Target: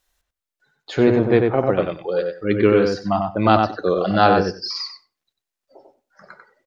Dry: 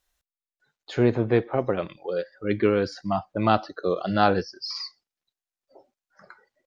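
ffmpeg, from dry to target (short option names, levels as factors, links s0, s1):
-filter_complex "[0:a]bandreject=f=60:t=h:w=6,bandreject=f=120:t=h:w=6,asplit=2[s0][s1];[s1]adelay=94,lowpass=f=2400:p=1,volume=0.668,asplit=2[s2][s3];[s3]adelay=94,lowpass=f=2400:p=1,volume=0.15,asplit=2[s4][s5];[s5]adelay=94,lowpass=f=2400:p=1,volume=0.15[s6];[s0][s2][s4][s6]amix=inputs=4:normalize=0,volume=1.78"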